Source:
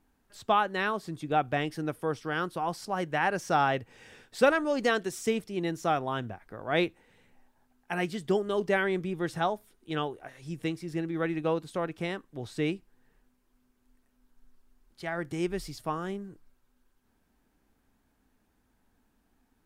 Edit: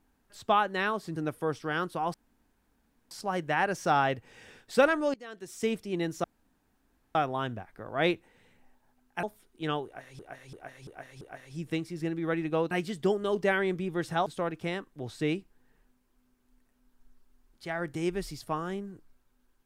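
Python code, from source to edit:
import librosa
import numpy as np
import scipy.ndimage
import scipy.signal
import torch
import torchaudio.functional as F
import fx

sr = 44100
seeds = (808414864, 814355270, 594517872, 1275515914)

y = fx.edit(x, sr, fx.cut(start_s=1.16, length_s=0.61),
    fx.insert_room_tone(at_s=2.75, length_s=0.97),
    fx.fade_in_from(start_s=4.78, length_s=0.57, curve='qua', floor_db=-22.5),
    fx.insert_room_tone(at_s=5.88, length_s=0.91),
    fx.move(start_s=7.96, length_s=1.55, to_s=11.63),
    fx.repeat(start_s=10.13, length_s=0.34, count=5), tone=tone)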